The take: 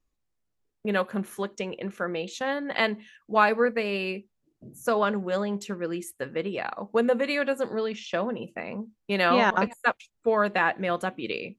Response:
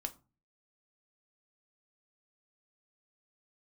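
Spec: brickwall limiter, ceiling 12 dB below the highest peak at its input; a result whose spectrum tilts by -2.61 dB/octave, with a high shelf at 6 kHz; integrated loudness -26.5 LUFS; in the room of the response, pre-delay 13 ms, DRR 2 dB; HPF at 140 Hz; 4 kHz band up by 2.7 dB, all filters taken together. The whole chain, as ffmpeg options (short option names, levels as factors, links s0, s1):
-filter_complex "[0:a]highpass=140,equalizer=f=4000:t=o:g=6,highshelf=f=6000:g=-7.5,alimiter=limit=0.126:level=0:latency=1,asplit=2[s0][s1];[1:a]atrim=start_sample=2205,adelay=13[s2];[s1][s2]afir=irnorm=-1:irlink=0,volume=0.944[s3];[s0][s3]amix=inputs=2:normalize=0,volume=1.26"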